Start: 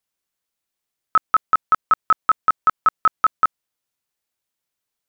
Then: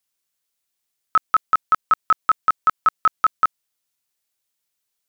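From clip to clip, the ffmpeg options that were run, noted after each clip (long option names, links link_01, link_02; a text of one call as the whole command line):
ffmpeg -i in.wav -af "highshelf=frequency=2400:gain=8,volume=-2.5dB" out.wav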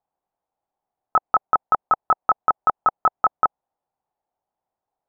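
ffmpeg -i in.wav -af "lowpass=frequency=790:width_type=q:width=4.9,volume=3dB" out.wav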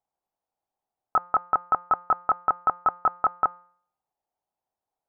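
ffmpeg -i in.wav -af "bandreject=frequency=176.7:width_type=h:width=4,bandreject=frequency=353.4:width_type=h:width=4,bandreject=frequency=530.1:width_type=h:width=4,bandreject=frequency=706.8:width_type=h:width=4,bandreject=frequency=883.5:width_type=h:width=4,bandreject=frequency=1060.2:width_type=h:width=4,bandreject=frequency=1236.9:width_type=h:width=4,bandreject=frequency=1413.6:width_type=h:width=4,bandreject=frequency=1590.3:width_type=h:width=4,bandreject=frequency=1767:width_type=h:width=4,bandreject=frequency=1943.7:width_type=h:width=4,bandreject=frequency=2120.4:width_type=h:width=4,bandreject=frequency=2297.1:width_type=h:width=4,bandreject=frequency=2473.8:width_type=h:width=4,bandreject=frequency=2650.5:width_type=h:width=4,bandreject=frequency=2827.2:width_type=h:width=4,bandreject=frequency=3003.9:width_type=h:width=4,bandreject=frequency=3180.6:width_type=h:width=4,bandreject=frequency=3357.3:width_type=h:width=4,bandreject=frequency=3534:width_type=h:width=4,bandreject=frequency=3710.7:width_type=h:width=4,bandreject=frequency=3887.4:width_type=h:width=4,bandreject=frequency=4064.1:width_type=h:width=4,bandreject=frequency=4240.8:width_type=h:width=4,bandreject=frequency=4417.5:width_type=h:width=4,bandreject=frequency=4594.2:width_type=h:width=4,bandreject=frequency=4770.9:width_type=h:width=4,bandreject=frequency=4947.6:width_type=h:width=4,volume=-4dB" out.wav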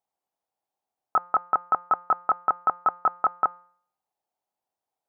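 ffmpeg -i in.wav -af "highpass=frequency=150:poles=1" out.wav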